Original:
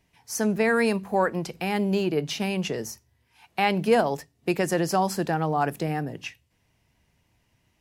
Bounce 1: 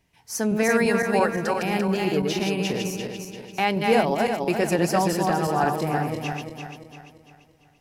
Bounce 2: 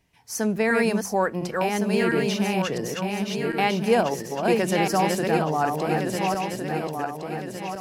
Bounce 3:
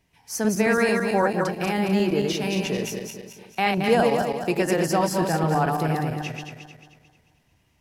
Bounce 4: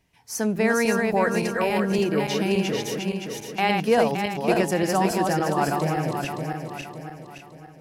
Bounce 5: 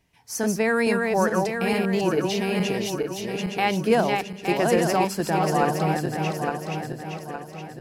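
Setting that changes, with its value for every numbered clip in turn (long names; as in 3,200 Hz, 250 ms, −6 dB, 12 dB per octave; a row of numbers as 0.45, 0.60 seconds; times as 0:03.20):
feedback delay that plays each chunk backwards, delay time: 171, 705, 111, 284, 433 milliseconds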